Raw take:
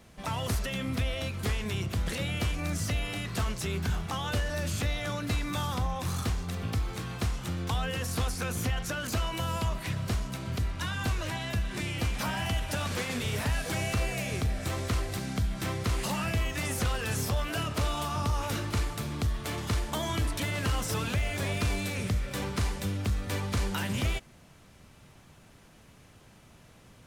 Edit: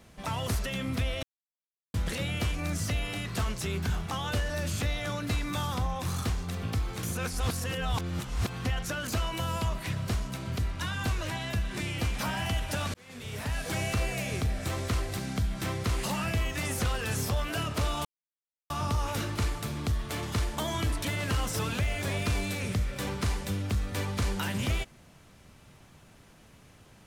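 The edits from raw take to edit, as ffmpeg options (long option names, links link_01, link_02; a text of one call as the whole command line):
ffmpeg -i in.wav -filter_complex "[0:a]asplit=7[link_01][link_02][link_03][link_04][link_05][link_06][link_07];[link_01]atrim=end=1.23,asetpts=PTS-STARTPTS,afade=type=out:start_time=1.226:duration=0.004:curve=hsin[link_08];[link_02]atrim=start=1.23:end=1.94,asetpts=PTS-STARTPTS,volume=0[link_09];[link_03]atrim=start=1.94:end=7.032,asetpts=PTS-STARTPTS,afade=type=in:duration=0.004:curve=hsin[link_10];[link_04]atrim=start=7.028:end=8.652,asetpts=PTS-STARTPTS,areverse[link_11];[link_05]atrim=start=8.648:end=12.94,asetpts=PTS-STARTPTS,afade=type=out:start_time=4.288:duration=0.004:curve=hsin[link_12];[link_06]atrim=start=12.94:end=18.05,asetpts=PTS-STARTPTS,afade=type=in:duration=0.82,afade=type=out:start_time=5.106:duration=0.004:curve=hsin,apad=pad_dur=0.65[link_13];[link_07]atrim=start=18.05,asetpts=PTS-STARTPTS,afade=type=in:duration=0.004:curve=hsin[link_14];[link_08][link_09][link_10]concat=n=3:v=0:a=1[link_15];[link_15][link_11]acrossfade=duration=0.004:curve1=hsin:curve2=hsin[link_16];[link_12][link_13][link_14]concat=n=3:v=0:a=1[link_17];[link_16][link_17]acrossfade=duration=0.004:curve1=hsin:curve2=hsin" out.wav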